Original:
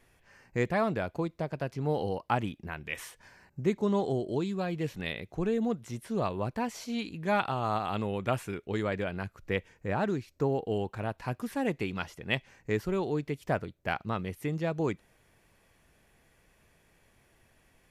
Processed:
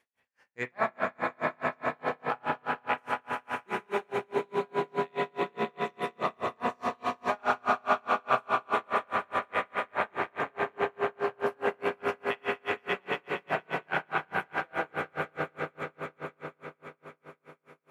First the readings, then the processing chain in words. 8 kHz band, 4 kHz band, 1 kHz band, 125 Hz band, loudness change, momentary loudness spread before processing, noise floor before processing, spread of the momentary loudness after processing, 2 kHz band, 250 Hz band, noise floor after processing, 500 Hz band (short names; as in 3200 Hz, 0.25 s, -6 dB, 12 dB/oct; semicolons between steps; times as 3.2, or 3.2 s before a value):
n/a, 0.0 dB, +5.5 dB, -12.5 dB, +0.5 dB, 7 LU, -66 dBFS, 9 LU, +5.5 dB, -8.0 dB, -73 dBFS, 0.0 dB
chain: in parallel at -11.5 dB: requantised 8-bit, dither none; on the sum: high shelf 7600 Hz -7.5 dB; spring tank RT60 2 s, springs 32 ms, chirp 65 ms, DRR -2 dB; dynamic EQ 1200 Hz, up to +7 dB, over -39 dBFS, Q 0.74; HPF 680 Hz 6 dB/oct; swelling echo 0.116 s, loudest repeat 5, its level -6 dB; dB-linear tremolo 4.8 Hz, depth 38 dB; gain -3 dB